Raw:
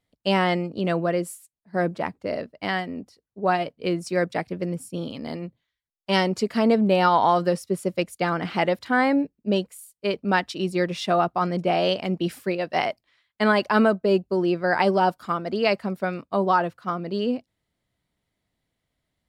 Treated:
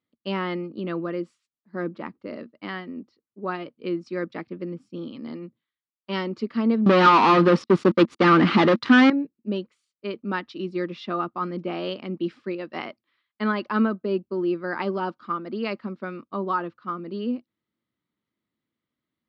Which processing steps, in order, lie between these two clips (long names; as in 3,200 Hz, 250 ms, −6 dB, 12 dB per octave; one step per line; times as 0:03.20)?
0:06.86–0:09.10: leveller curve on the samples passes 5
loudspeaker in its box 120–4,500 Hz, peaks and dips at 230 Hz +8 dB, 330 Hz +8 dB, 700 Hz −8 dB, 1,200 Hz +8 dB
level −8 dB